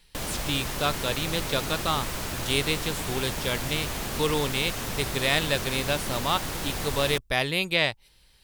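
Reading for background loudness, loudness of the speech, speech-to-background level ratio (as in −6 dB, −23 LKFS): −31.5 LKFS, −27.5 LKFS, 4.0 dB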